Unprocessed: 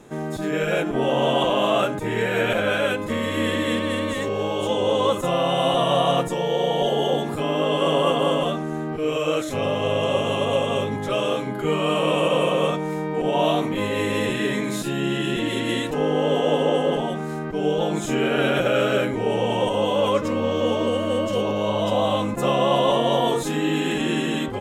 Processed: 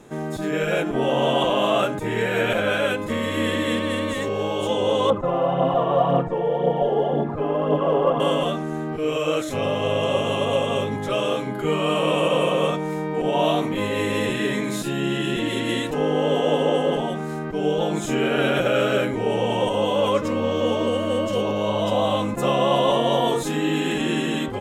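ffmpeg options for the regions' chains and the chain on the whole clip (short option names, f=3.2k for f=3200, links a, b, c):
-filter_complex "[0:a]asettb=1/sr,asplit=3[a][b][c];[a]atrim=end=5.104[d];[b]atrim=start=5.1:end=8.2,asetpts=PTS-STARTPTS,afade=t=in:d=0.004:c=qsin,afade=t=out:st=3.096:d=0.004:c=qsin,lowpass=1.3k,aphaser=in_gain=1:out_gain=1:delay=2.8:decay=0.43:speed=1.9:type=triangular[e];[c]atrim=start=8.196[f];[d][e]acrossfade=d=0.004:c1=hsin:c2=qsin[g];[g][f]acrossfade=d=0.004:c1=qsin:c2=hsin"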